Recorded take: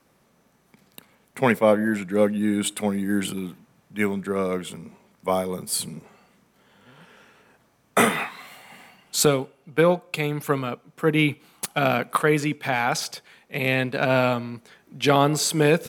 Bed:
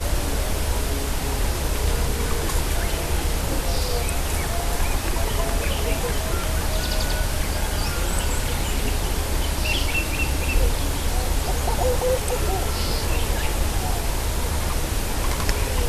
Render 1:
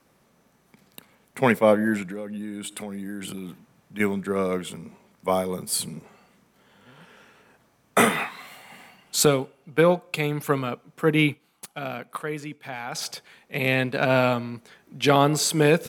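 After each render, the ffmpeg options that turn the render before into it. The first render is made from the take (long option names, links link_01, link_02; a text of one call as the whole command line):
ffmpeg -i in.wav -filter_complex "[0:a]asettb=1/sr,asplit=3[link_01][link_02][link_03];[link_01]atrim=end=2.024[link_04];[link_02]atrim=start=2.02:end=4,asetpts=PTS-STARTPTS,afade=type=in:duration=0.004:curve=qsin,afade=type=out:start_time=1.976:duration=0.004:curve=qsin,acompressor=threshold=-30dB:ratio=8:attack=3.2:release=140:knee=1:detection=peak[link_05];[link_03]atrim=start=3.996[link_06];[link_04][link_05]acrossfade=duration=0.004:curve1=hsin:curve2=qsin[link_07];[link_07][link_06]acrossfade=duration=0.004:curve1=qsin:curve2=hsin,asplit=3[link_08][link_09][link_10];[link_08]atrim=end=11.41,asetpts=PTS-STARTPTS,afade=type=out:start_time=11.26:duration=0.15:silence=0.281838[link_11];[link_09]atrim=start=11.41:end=12.91,asetpts=PTS-STARTPTS,volume=-11dB[link_12];[link_10]atrim=start=12.91,asetpts=PTS-STARTPTS,afade=type=in:duration=0.15:silence=0.281838[link_13];[link_11][link_12][link_13]concat=n=3:v=0:a=1" out.wav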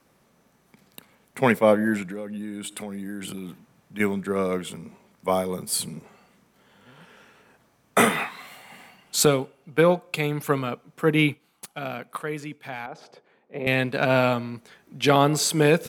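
ffmpeg -i in.wav -filter_complex "[0:a]asettb=1/sr,asplit=3[link_01][link_02][link_03];[link_01]atrim=end=12.864[link_04];[link_02]atrim=start=12.86:end=13.67,asetpts=PTS-STARTPTS,afade=type=in:duration=0.004:curve=qsin,afade=type=out:start_time=0.806:duration=0.004:curve=qsin,bandpass=frequency=430:width_type=q:width=1[link_05];[link_03]atrim=start=13.666[link_06];[link_04][link_05]acrossfade=duration=0.004:curve1=hsin:curve2=qsin[link_07];[link_07][link_06]acrossfade=duration=0.004:curve1=qsin:curve2=hsin" out.wav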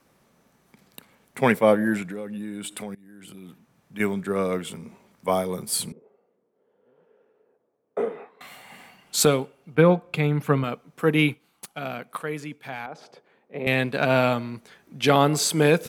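ffmpeg -i in.wav -filter_complex "[0:a]asettb=1/sr,asplit=3[link_01][link_02][link_03];[link_01]atrim=end=5.924[link_04];[link_02]atrim=start=5.92:end=8.41,asetpts=PTS-STARTPTS,afade=type=in:duration=0.004:curve=qsin,afade=type=out:start_time=2.486:duration=0.004:curve=qsin,bandpass=frequency=450:width_type=q:width=3.8[link_05];[link_03]atrim=start=8.406[link_06];[link_04][link_05]acrossfade=duration=0.004:curve1=hsin:curve2=qsin[link_07];[link_07][link_06]acrossfade=duration=0.004:curve1=qsin:curve2=hsin,asettb=1/sr,asplit=3[link_08][link_09][link_10];[link_08]atrim=end=9.754[link_11];[link_09]atrim=start=9.75:end=10.64,asetpts=PTS-STARTPTS,afade=type=in:duration=0.004:curve=qsin,afade=type=out:start_time=0.886:duration=0.004:curve=qsin,bass=frequency=250:gain=7,treble=frequency=4000:gain=-10[link_12];[link_10]atrim=start=10.636[link_13];[link_11][link_12]acrossfade=duration=0.004:curve1=hsin:curve2=qsin[link_14];[link_14][link_13]acrossfade=duration=0.004:curve1=qsin:curve2=hsin,asplit=2[link_15][link_16];[link_15]atrim=end=2.95,asetpts=PTS-STARTPTS,afade=type=out:start_time=2.946:duration=0.004:curve=hsin:silence=0.0707946[link_17];[link_16]atrim=start=2.95,asetpts=PTS-STARTPTS,afade=type=in:duration=1.23:silence=0.0707946[link_18];[link_17][link_18]concat=n=2:v=0:a=1" out.wav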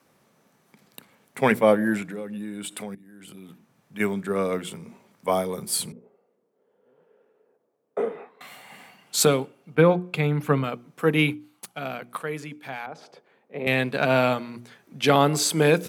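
ffmpeg -i in.wav -af "highpass=91,bandreject=frequency=60:width_type=h:width=6,bandreject=frequency=120:width_type=h:width=6,bandreject=frequency=180:width_type=h:width=6,bandreject=frequency=240:width_type=h:width=6,bandreject=frequency=300:width_type=h:width=6,bandreject=frequency=360:width_type=h:width=6" out.wav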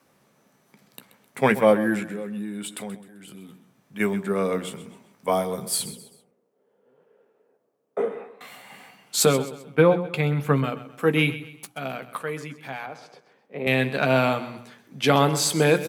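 ffmpeg -i in.wav -filter_complex "[0:a]asplit=2[link_01][link_02];[link_02]adelay=15,volume=-11.5dB[link_03];[link_01][link_03]amix=inputs=2:normalize=0,aecho=1:1:130|260|390:0.188|0.0697|0.0258" out.wav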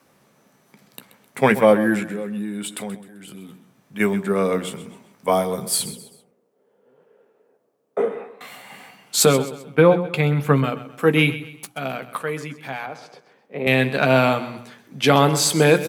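ffmpeg -i in.wav -af "volume=4dB,alimiter=limit=-3dB:level=0:latency=1" out.wav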